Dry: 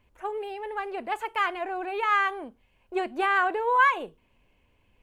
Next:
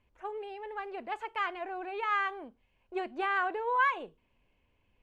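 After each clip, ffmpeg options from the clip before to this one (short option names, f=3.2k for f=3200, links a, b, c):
-af "lowpass=5.9k,volume=-6.5dB"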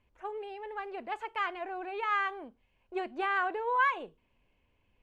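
-af anull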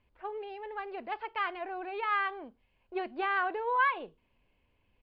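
-af "aresample=11025,aresample=44100"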